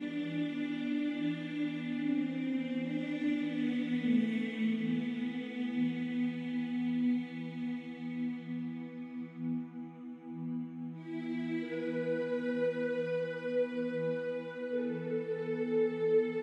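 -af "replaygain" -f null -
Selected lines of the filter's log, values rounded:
track_gain = +15.7 dB
track_peak = 0.073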